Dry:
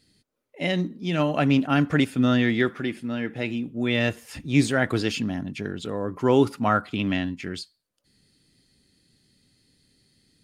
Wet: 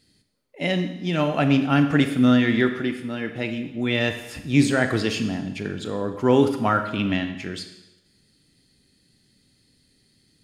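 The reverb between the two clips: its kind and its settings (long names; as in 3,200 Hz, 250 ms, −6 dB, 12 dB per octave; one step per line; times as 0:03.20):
four-comb reverb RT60 0.97 s, combs from 28 ms, DRR 7.5 dB
level +1 dB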